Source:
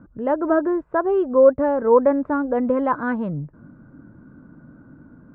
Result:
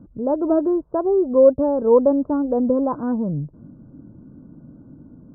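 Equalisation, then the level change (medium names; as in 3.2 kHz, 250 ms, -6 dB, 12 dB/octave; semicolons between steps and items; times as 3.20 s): Gaussian low-pass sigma 10 samples; +3.0 dB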